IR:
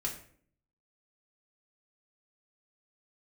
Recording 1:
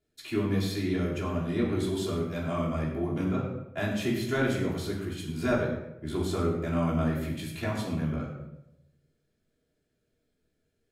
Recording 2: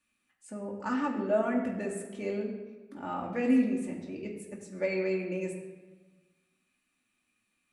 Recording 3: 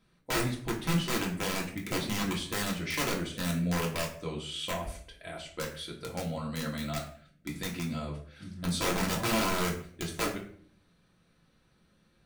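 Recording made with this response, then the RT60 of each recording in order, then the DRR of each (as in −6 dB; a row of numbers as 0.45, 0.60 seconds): 3; 0.90, 1.4, 0.55 seconds; −8.5, −1.5, −2.5 decibels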